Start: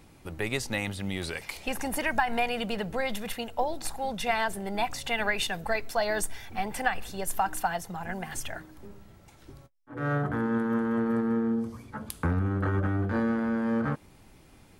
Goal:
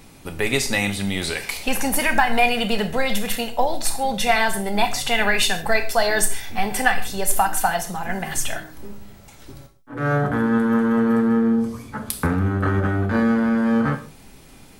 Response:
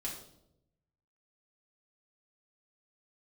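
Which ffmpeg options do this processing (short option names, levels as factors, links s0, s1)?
-filter_complex "[0:a]asplit=2[s0][s1];[1:a]atrim=start_sample=2205,afade=t=out:st=0.21:d=0.01,atrim=end_sample=9702,highshelf=f=2200:g=11[s2];[s1][s2]afir=irnorm=-1:irlink=0,volume=0.531[s3];[s0][s3]amix=inputs=2:normalize=0,volume=1.78"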